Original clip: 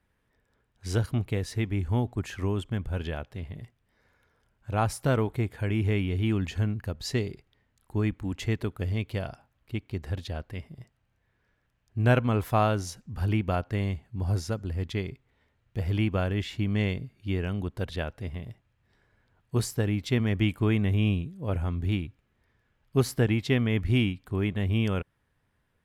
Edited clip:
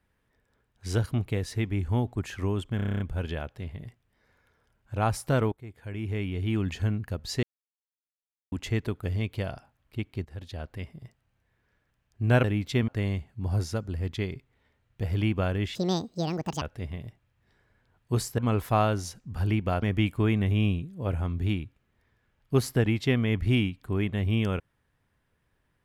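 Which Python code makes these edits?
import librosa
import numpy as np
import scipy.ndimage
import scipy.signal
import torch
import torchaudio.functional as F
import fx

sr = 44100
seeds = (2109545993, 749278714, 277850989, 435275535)

y = fx.edit(x, sr, fx.stutter(start_s=2.76, slice_s=0.03, count=9),
    fx.fade_in_from(start_s=5.28, length_s=1.2, floor_db=-22.5),
    fx.silence(start_s=7.19, length_s=1.09),
    fx.fade_in_from(start_s=10.01, length_s=0.5, floor_db=-14.0),
    fx.swap(start_s=12.2, length_s=1.44, other_s=19.81, other_length_s=0.44),
    fx.speed_span(start_s=16.51, length_s=1.53, speed=1.77), tone=tone)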